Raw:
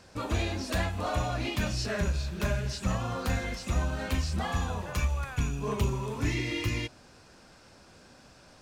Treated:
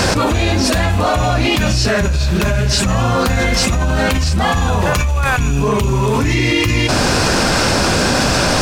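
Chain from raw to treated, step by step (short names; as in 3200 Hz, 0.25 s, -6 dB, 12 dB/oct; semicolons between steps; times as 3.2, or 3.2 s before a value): fast leveller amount 100%; gain +8.5 dB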